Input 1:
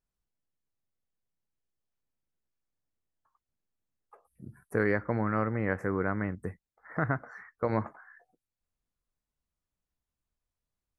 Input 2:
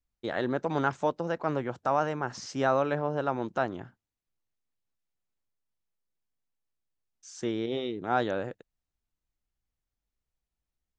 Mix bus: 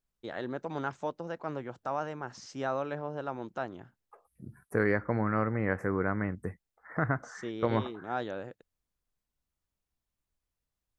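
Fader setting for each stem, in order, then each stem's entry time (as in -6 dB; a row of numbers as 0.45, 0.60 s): 0.0, -7.0 dB; 0.00, 0.00 s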